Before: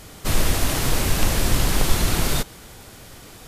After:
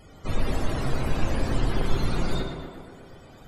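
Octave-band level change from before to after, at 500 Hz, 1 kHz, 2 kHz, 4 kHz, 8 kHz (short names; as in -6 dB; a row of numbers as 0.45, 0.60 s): -3.0, -5.5, -8.5, -12.0, -20.0 dB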